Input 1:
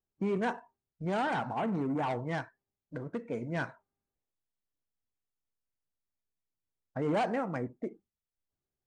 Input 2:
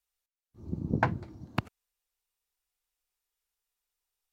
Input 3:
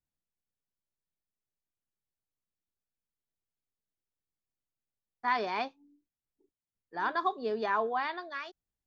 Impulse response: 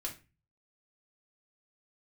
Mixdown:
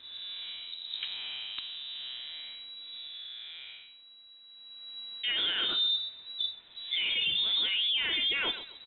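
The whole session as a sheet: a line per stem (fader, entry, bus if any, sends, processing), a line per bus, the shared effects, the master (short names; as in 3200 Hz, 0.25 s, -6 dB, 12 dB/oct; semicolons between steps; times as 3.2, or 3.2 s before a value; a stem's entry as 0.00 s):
+2.0 dB, 0.00 s, no send, no echo send, time blur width 0.334 s; compressor 2.5:1, threshold -41 dBFS, peak gain reduction 7 dB; Chebyshev high-pass 380 Hz, order 2
-11.0 dB, 0.00 s, no send, no echo send, dry
3.03 s -6.5 dB -> 3.37 s -16 dB -> 4.42 s -16 dB -> 5 s -4 dB, 0.00 s, send -4 dB, echo send -14.5 dB, fast leveller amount 100%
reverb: on, RT60 0.30 s, pre-delay 3 ms
echo: feedback echo 0.132 s, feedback 28%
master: inverted band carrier 3900 Hz; limiter -21.5 dBFS, peak gain reduction 7 dB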